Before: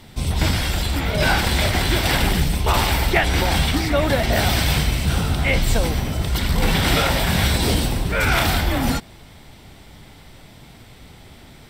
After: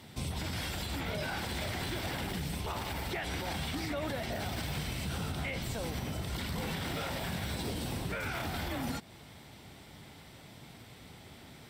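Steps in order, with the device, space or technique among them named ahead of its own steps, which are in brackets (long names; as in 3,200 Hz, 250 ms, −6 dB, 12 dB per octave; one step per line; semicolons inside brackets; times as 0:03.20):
podcast mastering chain (high-pass filter 86 Hz 12 dB per octave; de-essing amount 50%; downward compressor 2 to 1, threshold −29 dBFS, peak gain reduction 8.5 dB; brickwall limiter −20.5 dBFS, peak gain reduction 6 dB; level −6 dB; MP3 96 kbit/s 44,100 Hz)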